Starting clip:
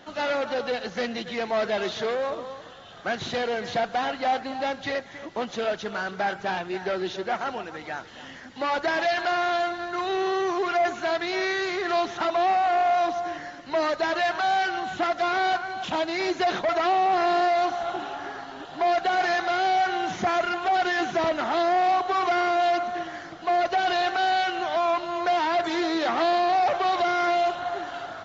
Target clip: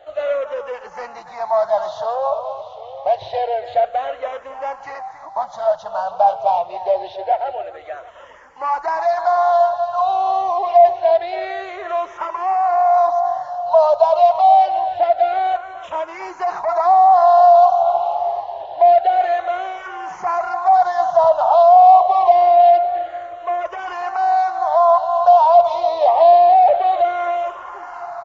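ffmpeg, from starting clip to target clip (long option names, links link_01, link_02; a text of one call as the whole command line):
ffmpeg -i in.wav -filter_complex "[0:a]firequalizer=gain_entry='entry(110,0);entry(230,-22);entry(600,13);entry(970,12);entry(1500,-5)':delay=0.05:min_phase=1,asplit=2[link_01][link_02];[link_02]aecho=0:1:745:0.158[link_03];[link_01][link_03]amix=inputs=2:normalize=0,asplit=2[link_04][link_05];[link_05]afreqshift=-0.26[link_06];[link_04][link_06]amix=inputs=2:normalize=1,volume=1.5dB" out.wav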